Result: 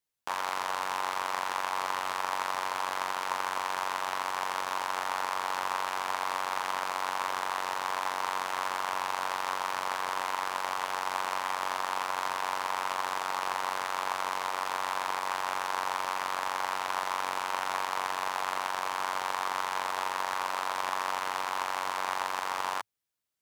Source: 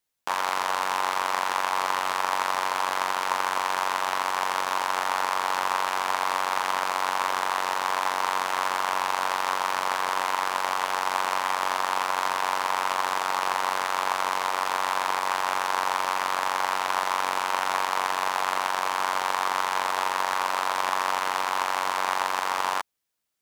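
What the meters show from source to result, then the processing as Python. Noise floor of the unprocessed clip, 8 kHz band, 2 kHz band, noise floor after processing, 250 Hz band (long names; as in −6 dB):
−30 dBFS, −6.0 dB, −6.0 dB, −36 dBFS, −6.0 dB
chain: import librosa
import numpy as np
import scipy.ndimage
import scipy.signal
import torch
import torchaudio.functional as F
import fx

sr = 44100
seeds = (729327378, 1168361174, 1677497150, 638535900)

y = fx.peak_eq(x, sr, hz=110.0, db=6.5, octaves=0.44)
y = y * librosa.db_to_amplitude(-6.0)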